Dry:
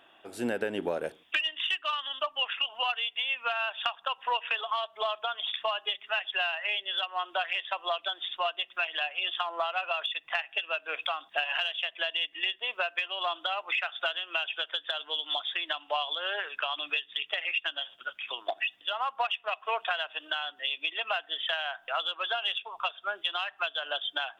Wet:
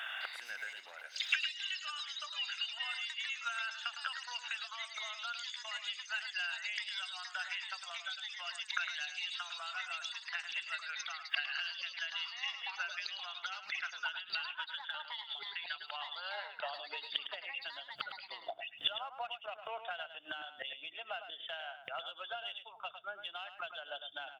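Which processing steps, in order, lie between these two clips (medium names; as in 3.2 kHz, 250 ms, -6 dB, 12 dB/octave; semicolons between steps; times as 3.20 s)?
bass shelf 310 Hz +7.5 dB; hum notches 60/120/180/240/300 Hz; comb 1.4 ms, depth 40%; inverted gate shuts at -35 dBFS, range -28 dB; high-pass sweep 1.6 kHz -> 120 Hz, 15.80–17.89 s; ever faster or slower copies 208 ms, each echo +5 st, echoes 3, each echo -6 dB; delay 106 ms -9.5 dB; trim +14 dB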